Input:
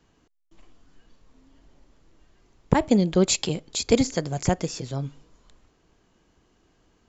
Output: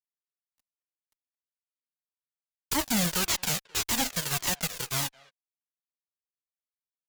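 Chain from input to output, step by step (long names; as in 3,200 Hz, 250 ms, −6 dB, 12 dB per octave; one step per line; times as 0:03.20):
spectral envelope flattened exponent 0.1
brickwall limiter −12.5 dBFS, peak gain reduction 10.5 dB
harmonic generator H 2 −15 dB, 6 −37 dB, 7 −22 dB, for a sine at −12.5 dBFS
fuzz pedal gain 32 dB, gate −41 dBFS
far-end echo of a speakerphone 220 ms, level −22 dB
flanger whose copies keep moving one way falling 1.8 Hz
level −5 dB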